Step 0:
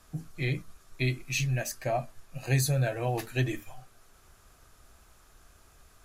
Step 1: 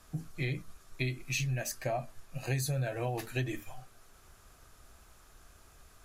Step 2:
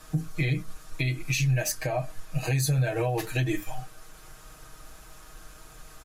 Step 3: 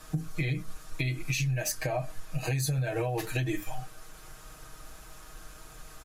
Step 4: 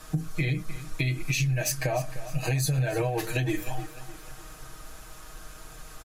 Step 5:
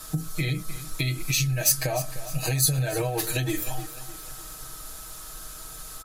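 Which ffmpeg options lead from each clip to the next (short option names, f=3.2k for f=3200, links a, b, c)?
-af "acompressor=threshold=-30dB:ratio=4"
-af "aecho=1:1:6.4:0.8,alimiter=level_in=1dB:limit=-24dB:level=0:latency=1:release=229,volume=-1dB,volume=8dB"
-af "acompressor=threshold=-26dB:ratio=6"
-af "aecho=1:1:304|608|912|1216:0.188|0.0866|0.0399|0.0183,volume=3dB"
-af "aexciter=amount=2.4:drive=5.7:freq=3.5k,aeval=exprs='val(0)+0.00251*sin(2*PI*1300*n/s)':c=same"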